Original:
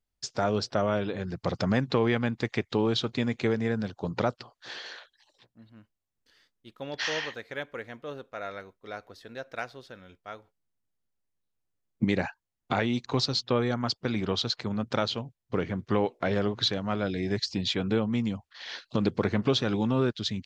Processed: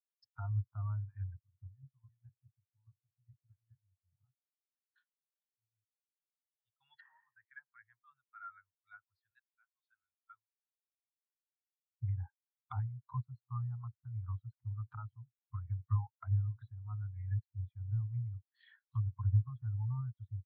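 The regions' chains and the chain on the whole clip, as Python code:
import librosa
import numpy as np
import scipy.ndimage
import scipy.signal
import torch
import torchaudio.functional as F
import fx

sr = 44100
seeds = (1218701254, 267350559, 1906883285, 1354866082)

y = fx.chain(x, sr, fx.chopper(hz=4.8, depth_pct=65, duty_pct=20),
    fx.bandpass_q(hz=200.0, q=1.2),
    fx.doubler(ms=22.0, db=-5.0), at=(1.41, 4.96))
y = fx.chain(y, sr, fx.high_shelf(hz=5700.0, db=-9.0),
    fx.band_squash(depth_pct=40), at=(7.07, 7.47))
y = fx.chain(y, sr, fx.auto_swell(attack_ms=336.0),
    fx.highpass(hz=150.0, slope=12), at=(9.3, 10.3))
y = scipy.signal.sosfilt(scipy.signal.cheby2(4, 60, [220.0, 460.0], 'bandstop', fs=sr, output='sos'), y)
y = fx.env_lowpass_down(y, sr, base_hz=830.0, full_db=-33.0)
y = fx.spectral_expand(y, sr, expansion=2.5)
y = y * librosa.db_to_amplitude(-3.0)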